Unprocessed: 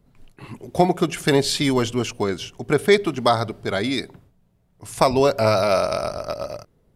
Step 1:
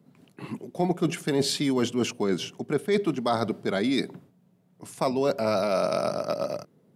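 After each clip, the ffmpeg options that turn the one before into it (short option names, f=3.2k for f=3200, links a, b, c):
-af "highpass=f=170:w=0.5412,highpass=f=170:w=1.3066,lowshelf=f=290:g=11.5,areverse,acompressor=threshold=-20dB:ratio=6,areverse,volume=-1.5dB"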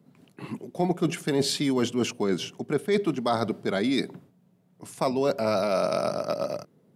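-af anull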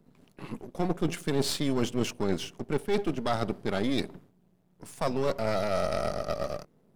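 -af "aeval=exprs='if(lt(val(0),0),0.251*val(0),val(0))':c=same"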